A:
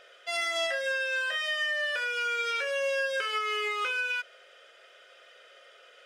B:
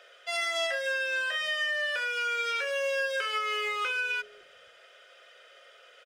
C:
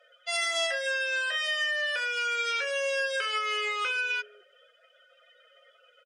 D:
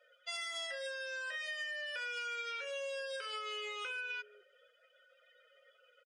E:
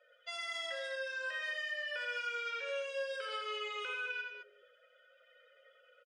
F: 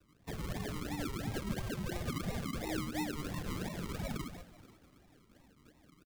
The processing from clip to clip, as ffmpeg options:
-filter_complex "[0:a]acrossover=split=420[s0][s1];[s0]acrusher=bits=3:mode=log:mix=0:aa=0.000001[s2];[s2][s1]amix=inputs=2:normalize=0,acrossover=split=290[s3][s4];[s3]adelay=560[s5];[s5][s4]amix=inputs=2:normalize=0"
-af "afftdn=nr=21:nf=-49,aemphasis=mode=production:type=cd"
-af "aecho=1:1:2.1:0.5,acompressor=threshold=0.0316:ratio=6,volume=0.398"
-af "lowpass=f=3100:p=1,aecho=1:1:84.55|209.9:0.631|0.398,volume=1.12"
-filter_complex "[0:a]acrusher=samples=37:mix=1:aa=0.000001:lfo=1:lforange=22.2:lforate=2.9,asplit=3[s0][s1][s2];[s1]adelay=489,afreqshift=56,volume=0.1[s3];[s2]adelay=978,afreqshift=112,volume=0.0309[s4];[s0][s3][s4]amix=inputs=3:normalize=0,afreqshift=-240,volume=1.19"

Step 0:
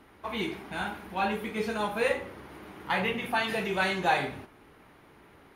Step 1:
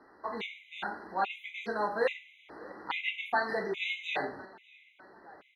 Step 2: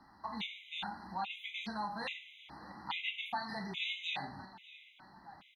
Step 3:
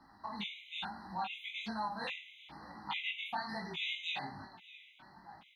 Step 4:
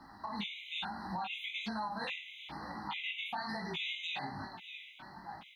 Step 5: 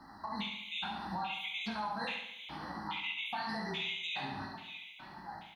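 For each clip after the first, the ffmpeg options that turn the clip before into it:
-filter_complex "[0:a]acrossover=split=250 5200:gain=0.158 1 0.0794[s0][s1][s2];[s0][s1][s2]amix=inputs=3:normalize=0,asplit=2[s3][s4];[s4]adelay=599,lowpass=f=4300:p=1,volume=0.0794,asplit=2[s5][s6];[s6]adelay=599,lowpass=f=4300:p=1,volume=0.51,asplit=2[s7][s8];[s8]adelay=599,lowpass=f=4300:p=1,volume=0.51,asplit=2[s9][s10];[s10]adelay=599,lowpass=f=4300:p=1,volume=0.51[s11];[s3][s5][s7][s9][s11]amix=inputs=5:normalize=0,afftfilt=real='re*gt(sin(2*PI*1.2*pts/sr)*(1-2*mod(floor(b*sr/1024/2000),2)),0)':imag='im*gt(sin(2*PI*1.2*pts/sr)*(1-2*mod(floor(b*sr/1024/2000),2)),0)':win_size=1024:overlap=0.75"
-af "firequalizer=gain_entry='entry(180,0);entry(440,-27);entry(830,-5);entry(1500,-14);entry(3300,1);entry(7300,-5)':delay=0.05:min_phase=1,acompressor=threshold=0.00447:ratio=2,volume=2.24"
-af "flanger=delay=17.5:depth=7.3:speed=1.1,volume=1.41"
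-af "alimiter=level_in=4.22:limit=0.0631:level=0:latency=1:release=209,volume=0.237,volume=2.24"
-af "aecho=1:1:70|140|210|280|350|420:0.447|0.232|0.121|0.0628|0.0327|0.017"

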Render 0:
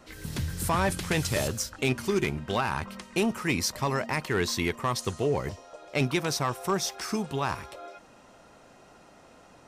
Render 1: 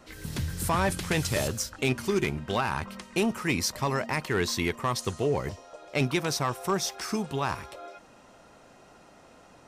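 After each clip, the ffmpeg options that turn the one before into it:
-af anull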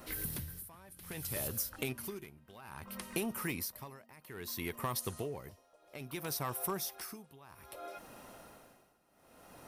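-af "aexciter=amount=9.6:drive=2.7:freq=9900,acompressor=threshold=0.0178:ratio=5,tremolo=f=0.61:d=0.91,volume=1.12"

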